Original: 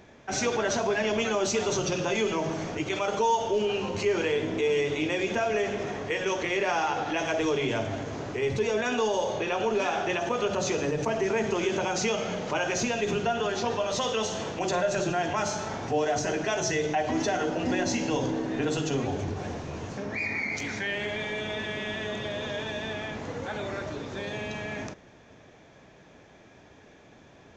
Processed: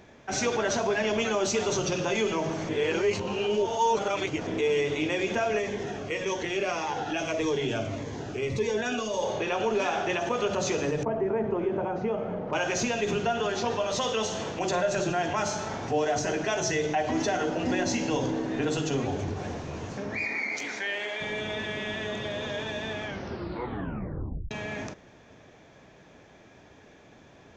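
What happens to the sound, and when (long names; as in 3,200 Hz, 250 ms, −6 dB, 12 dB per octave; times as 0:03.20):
0:02.69–0:04.47: reverse
0:05.59–0:09.23: phaser whose notches keep moving one way falling 1.7 Hz
0:11.03–0:12.53: low-pass filter 1,000 Hz
0:20.24–0:21.20: high-pass filter 240 Hz → 510 Hz
0:23.02: tape stop 1.49 s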